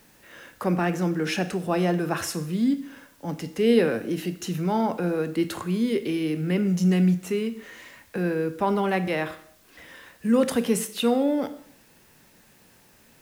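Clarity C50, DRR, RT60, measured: 14.0 dB, 10.0 dB, 0.65 s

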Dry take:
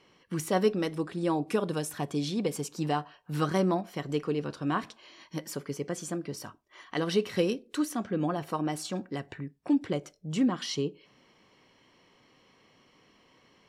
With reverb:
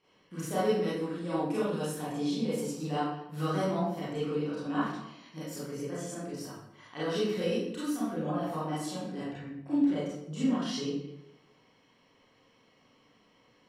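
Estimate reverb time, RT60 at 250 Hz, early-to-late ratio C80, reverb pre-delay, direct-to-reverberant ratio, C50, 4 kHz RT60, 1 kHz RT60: 0.85 s, 1.0 s, 2.5 dB, 28 ms, -10.0 dB, -2.5 dB, 0.60 s, 0.85 s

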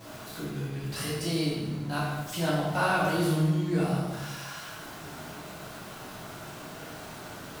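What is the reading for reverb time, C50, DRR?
1.2 s, -0.5 dB, -9.5 dB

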